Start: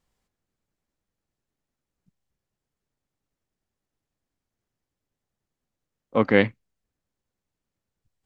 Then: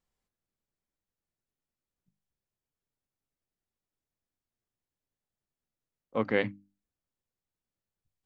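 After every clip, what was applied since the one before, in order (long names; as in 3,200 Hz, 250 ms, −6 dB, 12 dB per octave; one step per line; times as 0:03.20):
mains-hum notches 50/100/150/200/250/300 Hz
level −8.5 dB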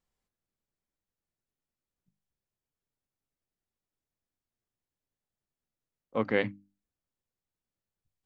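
no processing that can be heard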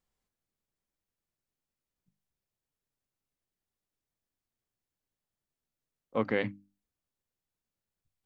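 brickwall limiter −16 dBFS, peak gain reduction 3.5 dB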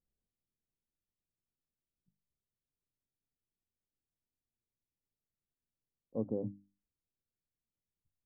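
Gaussian smoothing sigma 15 samples
level −2.5 dB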